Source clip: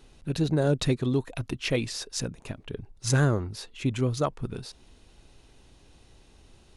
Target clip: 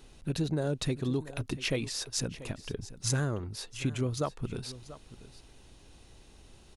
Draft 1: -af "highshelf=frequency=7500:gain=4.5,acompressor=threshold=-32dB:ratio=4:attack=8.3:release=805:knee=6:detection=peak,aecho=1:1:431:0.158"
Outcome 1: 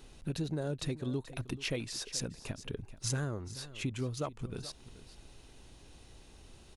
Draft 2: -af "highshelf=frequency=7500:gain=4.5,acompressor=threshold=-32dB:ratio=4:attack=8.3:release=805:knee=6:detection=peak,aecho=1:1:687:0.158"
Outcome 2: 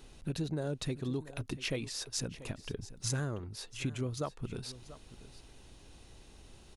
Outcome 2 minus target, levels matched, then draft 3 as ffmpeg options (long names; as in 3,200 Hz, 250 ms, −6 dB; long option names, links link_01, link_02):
downward compressor: peak gain reduction +5 dB
-af "highshelf=frequency=7500:gain=4.5,acompressor=threshold=-25.5dB:ratio=4:attack=8.3:release=805:knee=6:detection=peak,aecho=1:1:687:0.158"